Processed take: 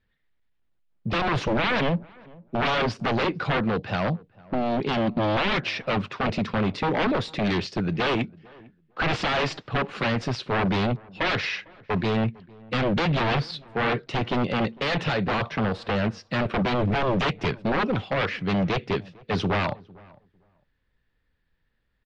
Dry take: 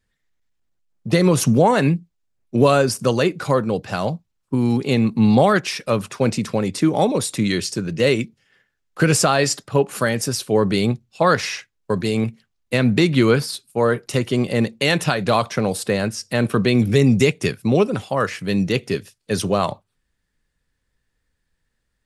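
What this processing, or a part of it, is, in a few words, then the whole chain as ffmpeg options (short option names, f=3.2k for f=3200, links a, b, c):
synthesiser wavefolder: -filter_complex "[0:a]aeval=exprs='0.126*(abs(mod(val(0)/0.126+3,4)-2)-1)':c=same,lowpass=f=3.9k:w=0.5412,lowpass=f=3.9k:w=1.3066,asplit=2[a][b];[b]adelay=452,lowpass=f=1.2k:p=1,volume=-23dB,asplit=2[c][d];[d]adelay=452,lowpass=f=1.2k:p=1,volume=0.18[e];[a][c][e]amix=inputs=3:normalize=0,asettb=1/sr,asplit=3[f][g][h];[f]atrim=end=15.264[i];[g]atrim=start=15.26:end=17.13,asetpts=PTS-STARTPTS,afade=t=in:d=0.004:c=qsin,afade=t=out:st=1.866:d=0.004:c=qsin,adynamicequalizer=threshold=0.01:dfrequency=1900:dqfactor=0.7:tfrequency=1900:tqfactor=0.7:attack=5:release=100:ratio=0.375:range=2:mode=cutabove:tftype=highshelf[j];[h]atrim=start=17.126[k];[i][j]acrossfade=d=0.004:c1=hsin:c2=qsin[l];[l][k]acrossfade=d=0.004:c1=qsin:c2=hsin"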